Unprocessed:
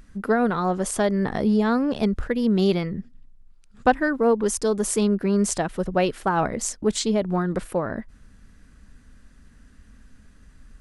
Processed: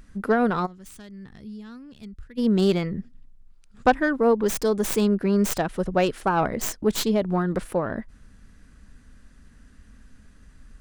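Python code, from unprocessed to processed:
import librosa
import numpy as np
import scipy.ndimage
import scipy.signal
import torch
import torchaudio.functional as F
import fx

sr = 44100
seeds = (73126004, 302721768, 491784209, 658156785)

y = fx.tracing_dist(x, sr, depth_ms=0.19)
y = fx.tone_stack(y, sr, knobs='6-0-2', at=(0.65, 2.37), fade=0.02)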